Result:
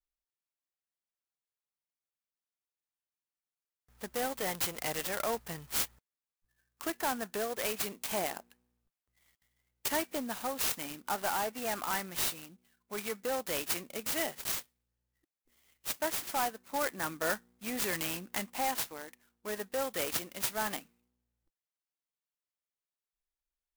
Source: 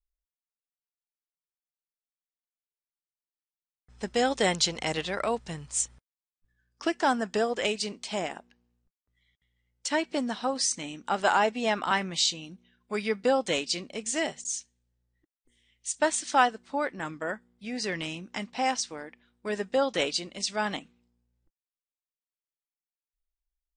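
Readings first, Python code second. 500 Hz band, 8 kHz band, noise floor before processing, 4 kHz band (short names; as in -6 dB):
-7.5 dB, -4.5 dB, under -85 dBFS, -8.0 dB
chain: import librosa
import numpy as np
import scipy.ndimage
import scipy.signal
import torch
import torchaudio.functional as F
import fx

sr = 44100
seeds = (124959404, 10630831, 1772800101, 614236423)

y = fx.vibrato(x, sr, rate_hz=2.0, depth_cents=34.0)
y = 10.0 ** (-22.5 / 20.0) * np.tanh(y / 10.0 ** (-22.5 / 20.0))
y = fx.rider(y, sr, range_db=10, speed_s=0.5)
y = fx.low_shelf(y, sr, hz=490.0, db=-9.0)
y = fx.clock_jitter(y, sr, seeds[0], jitter_ms=0.07)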